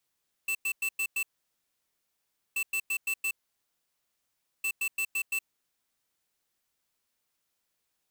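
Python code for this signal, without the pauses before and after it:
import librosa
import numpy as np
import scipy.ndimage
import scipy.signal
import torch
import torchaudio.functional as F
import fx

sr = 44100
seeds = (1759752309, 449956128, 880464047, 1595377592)

y = fx.beep_pattern(sr, wave='square', hz=2660.0, on_s=0.07, off_s=0.1, beeps=5, pause_s=1.33, groups=3, level_db=-29.5)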